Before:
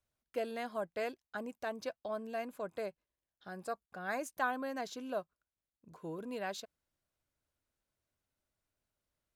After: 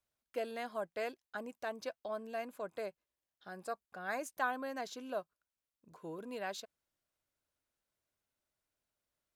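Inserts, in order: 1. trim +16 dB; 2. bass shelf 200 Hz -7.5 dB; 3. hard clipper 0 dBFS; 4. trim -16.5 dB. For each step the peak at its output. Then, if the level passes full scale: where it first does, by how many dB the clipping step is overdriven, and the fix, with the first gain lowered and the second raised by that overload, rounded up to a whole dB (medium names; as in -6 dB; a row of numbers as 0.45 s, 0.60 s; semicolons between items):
-5.0 dBFS, -5.0 dBFS, -5.0 dBFS, -21.5 dBFS; nothing clips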